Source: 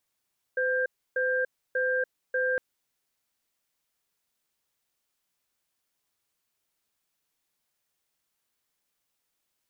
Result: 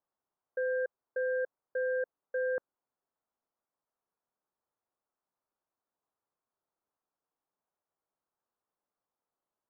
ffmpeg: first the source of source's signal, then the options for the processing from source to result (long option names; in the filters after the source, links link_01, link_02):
-f lavfi -i "aevalsrc='0.0473*(sin(2*PI*510*t)+sin(2*PI*1590*t))*clip(min(mod(t,0.59),0.29-mod(t,0.59))/0.005,0,1)':duration=2.01:sample_rate=44100"
-af "lowpass=frequency=1200:width=0.5412,lowpass=frequency=1200:width=1.3066,lowshelf=frequency=230:gain=-11.5" -ar 44100 -c:a aac -b:a 192k